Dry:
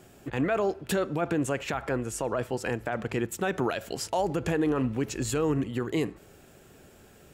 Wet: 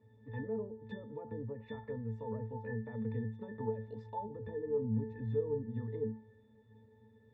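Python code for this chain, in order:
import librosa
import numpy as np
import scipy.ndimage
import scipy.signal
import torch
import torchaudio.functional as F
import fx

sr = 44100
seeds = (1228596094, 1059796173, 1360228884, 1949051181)

y = fx.env_lowpass_down(x, sr, base_hz=810.0, full_db=-23.5)
y = fx.octave_resonator(y, sr, note='A', decay_s=0.32)
y = y * 10.0 ** (5.0 / 20.0)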